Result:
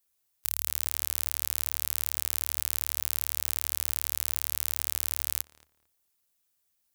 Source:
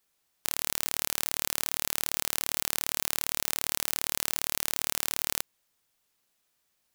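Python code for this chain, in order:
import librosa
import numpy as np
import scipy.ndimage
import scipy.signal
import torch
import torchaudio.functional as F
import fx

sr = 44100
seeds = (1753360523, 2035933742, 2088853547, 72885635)

p1 = fx.peak_eq(x, sr, hz=73.0, db=14.5, octaves=0.44)
p2 = fx.hpss(p1, sr, part='harmonic', gain_db=-5)
p3 = fx.high_shelf(p2, sr, hz=6700.0, db=11.5)
p4 = p3 + fx.echo_filtered(p3, sr, ms=225, feedback_pct=22, hz=2200.0, wet_db=-15.5, dry=0)
y = p4 * librosa.db_to_amplitude(-6.5)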